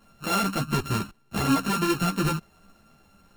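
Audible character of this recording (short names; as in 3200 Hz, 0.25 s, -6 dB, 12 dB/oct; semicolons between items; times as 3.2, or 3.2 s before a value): a buzz of ramps at a fixed pitch in blocks of 32 samples; a shimmering, thickened sound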